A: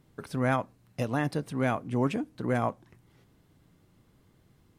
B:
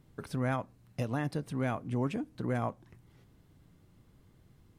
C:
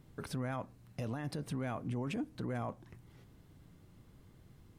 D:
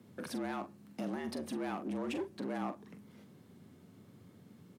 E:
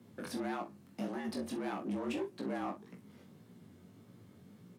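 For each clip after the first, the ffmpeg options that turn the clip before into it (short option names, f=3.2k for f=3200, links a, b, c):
-af "lowshelf=f=130:g=7,acompressor=threshold=-33dB:ratio=1.5,volume=-2dB"
-af "alimiter=level_in=8.5dB:limit=-24dB:level=0:latency=1:release=21,volume=-8.5dB,volume=2dB"
-filter_complex "[0:a]volume=34.5dB,asoftclip=hard,volume=-34.5dB,asplit=2[a][b];[b]adelay=43,volume=-10dB[c];[a][c]amix=inputs=2:normalize=0,afreqshift=86,volume=1dB"
-af "flanger=delay=16.5:depth=5.4:speed=1.7,volume=3dB"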